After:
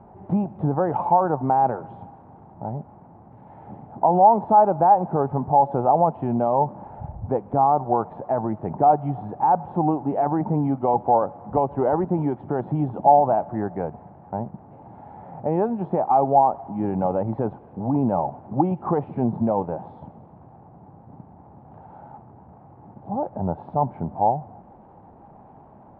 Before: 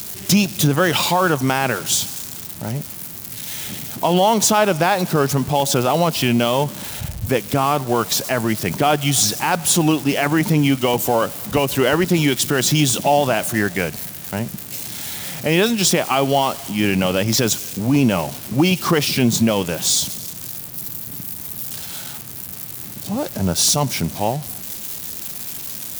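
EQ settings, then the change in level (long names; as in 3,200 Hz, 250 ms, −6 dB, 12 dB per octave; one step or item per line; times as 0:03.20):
transistor ladder low-pass 900 Hz, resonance 70%
high-frequency loss of the air 300 metres
+5.0 dB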